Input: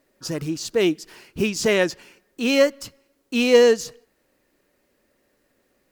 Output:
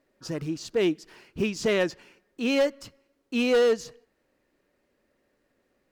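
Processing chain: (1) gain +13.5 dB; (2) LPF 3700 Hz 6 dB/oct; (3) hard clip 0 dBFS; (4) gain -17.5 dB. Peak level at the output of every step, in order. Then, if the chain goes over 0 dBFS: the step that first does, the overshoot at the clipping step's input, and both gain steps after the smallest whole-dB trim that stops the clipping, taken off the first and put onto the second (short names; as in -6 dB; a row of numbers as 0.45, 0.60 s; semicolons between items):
+9.0, +8.5, 0.0, -17.5 dBFS; step 1, 8.5 dB; step 1 +4.5 dB, step 4 -8.5 dB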